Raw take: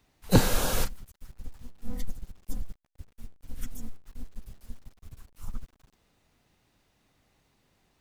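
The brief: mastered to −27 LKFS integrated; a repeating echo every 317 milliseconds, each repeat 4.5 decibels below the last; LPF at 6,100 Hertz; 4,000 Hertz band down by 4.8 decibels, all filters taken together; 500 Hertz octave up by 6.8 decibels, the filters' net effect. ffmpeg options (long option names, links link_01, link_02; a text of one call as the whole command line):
ffmpeg -i in.wav -af "lowpass=6100,equalizer=frequency=500:width_type=o:gain=7.5,equalizer=frequency=4000:width_type=o:gain=-5,aecho=1:1:317|634|951|1268|1585|1902|2219|2536|2853:0.596|0.357|0.214|0.129|0.0772|0.0463|0.0278|0.0167|0.01,volume=0.5dB" out.wav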